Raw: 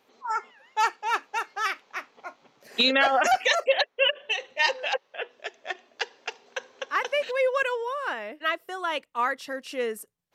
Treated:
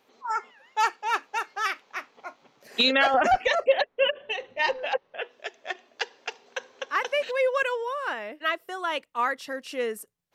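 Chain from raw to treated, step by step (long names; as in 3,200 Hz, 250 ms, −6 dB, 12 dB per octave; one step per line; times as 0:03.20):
0:03.14–0:05.19: RIAA equalisation playback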